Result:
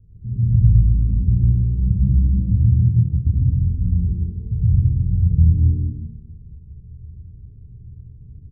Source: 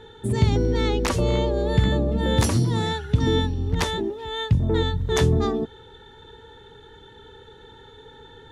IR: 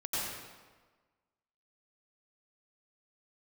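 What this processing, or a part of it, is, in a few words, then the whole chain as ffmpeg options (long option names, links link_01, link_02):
club heard from the street: -filter_complex "[0:a]alimiter=limit=-19.5dB:level=0:latency=1:release=28,lowpass=frequency=150:width=0.5412,lowpass=frequency=150:width=1.3066[link_01];[1:a]atrim=start_sample=2205[link_02];[link_01][link_02]afir=irnorm=-1:irlink=0,asplit=3[link_03][link_04][link_05];[link_03]afade=type=out:start_time=2.8:duration=0.02[link_06];[link_04]agate=range=-33dB:threshold=-20dB:ratio=3:detection=peak,afade=type=in:start_time=2.8:duration=0.02,afade=type=out:start_time=3.4:duration=0.02[link_07];[link_05]afade=type=in:start_time=3.4:duration=0.02[link_08];[link_06][link_07][link_08]amix=inputs=3:normalize=0,asettb=1/sr,asplit=3[link_09][link_10][link_11];[link_09]atrim=end=4.314[link_12];[link_10]atrim=start=4.31:end=4.74,asetpts=PTS-STARTPTS,afade=type=in:duration=0.004:curve=qsin,afade=type=out:start_time=0.426:duration=0.004:curve=qsin,lowpass=1300[link_13];[link_11]atrim=start=4.736[link_14];[link_12][link_13]acrossfade=duration=0.004:curve1=hsin:curve2=qsin[link_15];[link_15][link_14]acrossfade=duration=0.004:curve1=qsin:curve2=hsin,aecho=1:1:153:0.531,volume=8dB"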